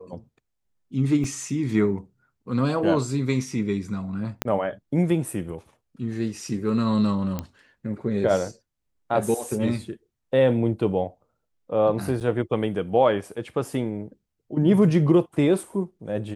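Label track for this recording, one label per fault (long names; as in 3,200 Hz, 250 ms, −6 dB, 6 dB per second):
1.240000	1.240000	drop-out 2.3 ms
4.420000	4.420000	click −8 dBFS
7.390000	7.390000	click −15 dBFS
12.200000	12.210000	drop-out 7.8 ms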